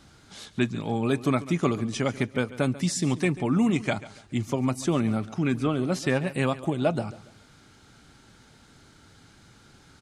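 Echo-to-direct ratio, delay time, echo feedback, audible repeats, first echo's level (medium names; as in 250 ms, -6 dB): -16.5 dB, 140 ms, 32%, 2, -17.0 dB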